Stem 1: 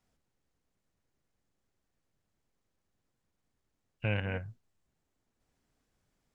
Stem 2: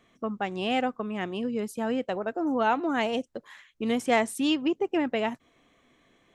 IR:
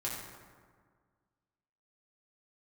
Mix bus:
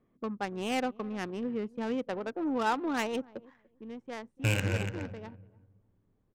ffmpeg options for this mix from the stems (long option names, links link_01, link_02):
-filter_complex "[0:a]aexciter=amount=1.3:drive=8.3:freq=2800,adelay=400,volume=2.5dB,asplit=3[link_01][link_02][link_03];[link_02]volume=-8dB[link_04];[link_03]volume=-6.5dB[link_05];[1:a]volume=-3.5dB,afade=type=out:start_time=3.45:duration=0.39:silence=0.251189,asplit=3[link_06][link_07][link_08];[link_07]volume=-22dB[link_09];[link_08]apad=whole_len=297333[link_10];[link_01][link_10]sidechaincompress=threshold=-42dB:ratio=4:attack=49:release=406[link_11];[2:a]atrim=start_sample=2205[link_12];[link_04][link_12]afir=irnorm=-1:irlink=0[link_13];[link_05][link_09]amix=inputs=2:normalize=0,aecho=0:1:291|582|873:1|0.19|0.0361[link_14];[link_11][link_06][link_13][link_14]amix=inputs=4:normalize=0,equalizer=frequency=680:width=7.3:gain=-8,adynamicsmooth=sensitivity=4.5:basefreq=780,highshelf=frequency=5000:gain=9"